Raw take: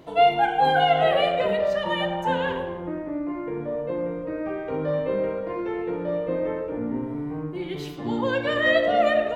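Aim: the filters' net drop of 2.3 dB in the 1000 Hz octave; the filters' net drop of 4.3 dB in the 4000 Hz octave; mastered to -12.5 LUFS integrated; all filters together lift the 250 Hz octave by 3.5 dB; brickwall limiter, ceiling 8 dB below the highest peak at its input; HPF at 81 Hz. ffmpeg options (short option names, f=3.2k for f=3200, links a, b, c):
-af "highpass=81,equalizer=f=250:t=o:g=5,equalizer=f=1k:t=o:g=-4,equalizer=f=4k:t=o:g=-6.5,volume=14.5dB,alimiter=limit=-2.5dB:level=0:latency=1"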